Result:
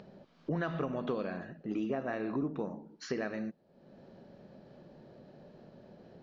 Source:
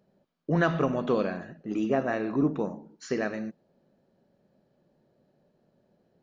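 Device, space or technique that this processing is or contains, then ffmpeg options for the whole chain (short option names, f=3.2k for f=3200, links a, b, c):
upward and downward compression: -af "lowpass=f=5.5k:w=0.5412,lowpass=f=5.5k:w=1.3066,acompressor=mode=upward:threshold=-37dB:ratio=2.5,acompressor=threshold=-28dB:ratio=6,volume=-2.5dB"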